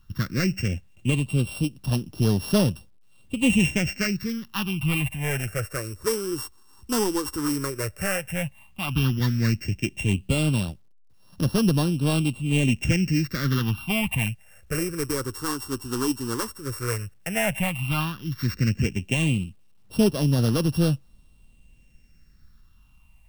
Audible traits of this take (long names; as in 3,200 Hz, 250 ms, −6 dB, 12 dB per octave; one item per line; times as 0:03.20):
a buzz of ramps at a fixed pitch in blocks of 16 samples
phaser sweep stages 6, 0.11 Hz, lowest notch 160–2,200 Hz
a quantiser's noise floor 12 bits, dither none